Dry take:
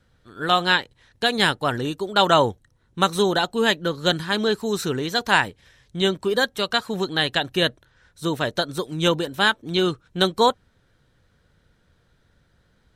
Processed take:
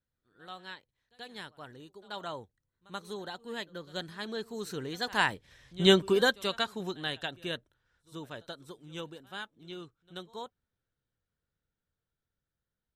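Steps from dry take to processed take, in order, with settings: Doppler pass-by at 5.89, 9 m/s, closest 2.4 m; reverse echo 83 ms -21.5 dB

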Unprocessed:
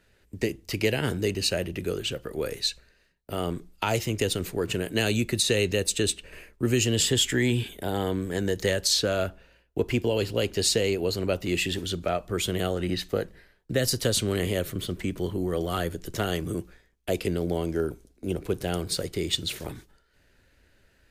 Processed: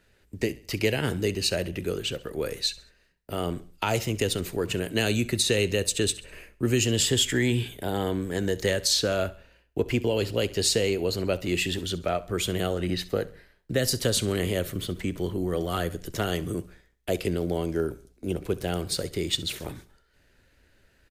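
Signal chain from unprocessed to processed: 18.36–18.82 de-esser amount 65%; on a send: feedback echo 67 ms, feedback 41%, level -19 dB

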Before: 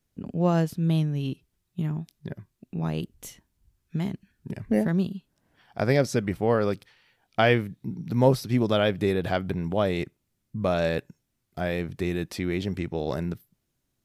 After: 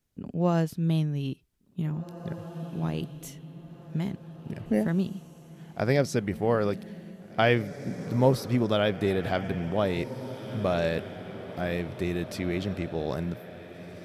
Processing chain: diffused feedback echo 1.93 s, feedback 40%, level -12.5 dB; gain -2 dB

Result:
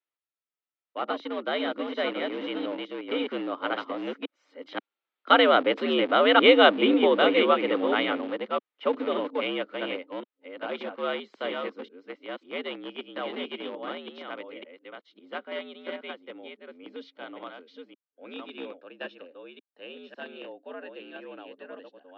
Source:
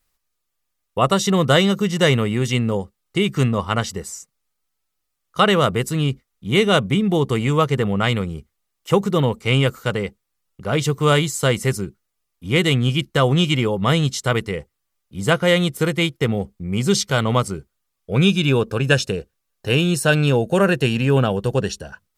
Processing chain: reverse delay 0.541 s, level -3.5 dB; Doppler pass-by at 6.33, 6 m/s, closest 5.4 m; in parallel at -9 dB: Schmitt trigger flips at -29.5 dBFS; on the sum: mistuned SSB +76 Hz 210–3600 Hz

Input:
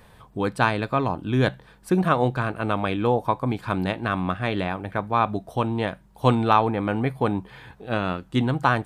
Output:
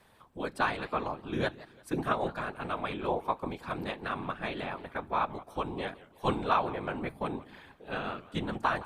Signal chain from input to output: whisperiser; low shelf 260 Hz -9 dB; warbling echo 0.172 s, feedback 37%, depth 218 cents, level -19 dB; gain -7.5 dB

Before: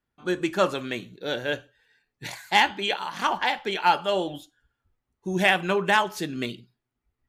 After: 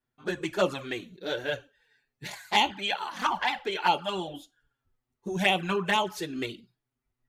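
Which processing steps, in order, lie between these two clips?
envelope flanger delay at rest 8 ms, full sweep at -16.5 dBFS

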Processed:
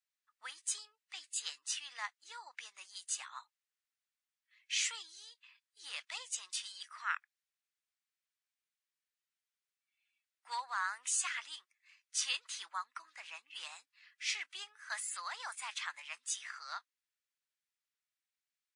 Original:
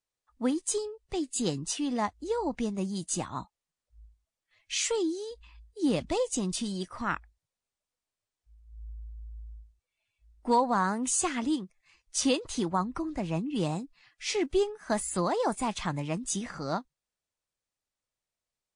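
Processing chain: HPF 1500 Hz 24 dB/oct; high shelf 3100 Hz -9 dB; gain +2.5 dB

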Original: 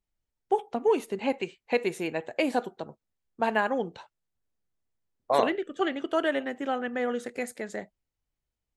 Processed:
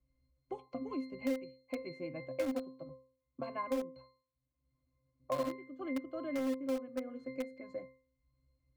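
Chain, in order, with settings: octave resonator C, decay 0.37 s; in parallel at -11 dB: requantised 6-bit, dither none; on the sum: three-band squash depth 70%; gain +5 dB

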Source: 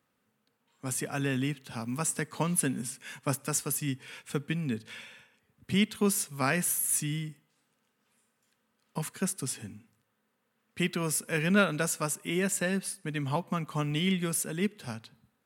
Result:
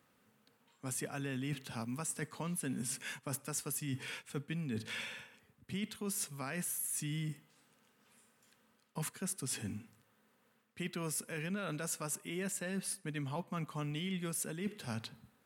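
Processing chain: limiter -20 dBFS, peak gain reduction 11 dB; reverse; compressor 6:1, threshold -42 dBFS, peak gain reduction 16.5 dB; reverse; gain +5 dB

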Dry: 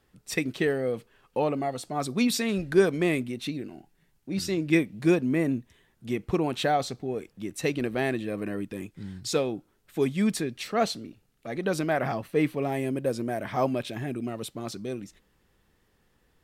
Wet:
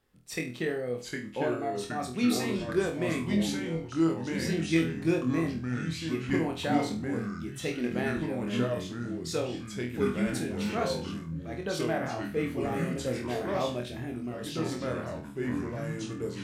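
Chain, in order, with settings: echoes that change speed 0.686 s, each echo -3 st, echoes 3; flutter echo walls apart 4.2 m, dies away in 0.34 s; gain -7 dB

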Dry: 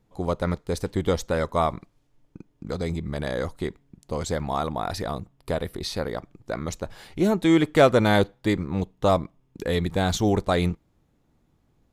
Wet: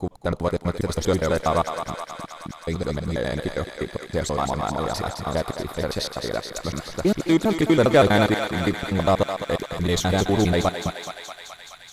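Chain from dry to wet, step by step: slices in reverse order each 81 ms, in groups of 3; in parallel at -8 dB: hard clip -22.5 dBFS, distortion -6 dB; on the sum: thinning echo 0.212 s, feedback 82%, high-pass 640 Hz, level -6 dB

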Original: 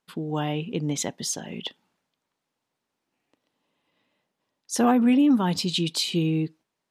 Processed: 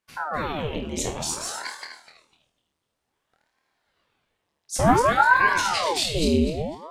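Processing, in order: regenerating reverse delay 0.125 s, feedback 48%, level -3 dB; bell 8500 Hz +4 dB 0.23 oct; flutter echo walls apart 4.3 m, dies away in 0.35 s; ring modulator with a swept carrier 700 Hz, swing 90%, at 0.55 Hz

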